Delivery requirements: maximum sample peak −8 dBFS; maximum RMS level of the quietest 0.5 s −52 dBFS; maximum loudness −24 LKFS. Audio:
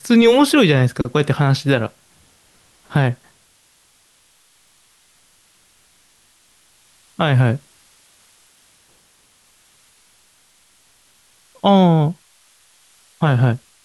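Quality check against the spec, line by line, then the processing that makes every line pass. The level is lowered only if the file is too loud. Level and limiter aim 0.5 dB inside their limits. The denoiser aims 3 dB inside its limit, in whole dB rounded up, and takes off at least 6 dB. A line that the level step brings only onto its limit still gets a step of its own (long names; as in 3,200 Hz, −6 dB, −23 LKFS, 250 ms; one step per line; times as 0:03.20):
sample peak −3.5 dBFS: out of spec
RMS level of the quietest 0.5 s −56 dBFS: in spec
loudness −16.5 LKFS: out of spec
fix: level −8 dB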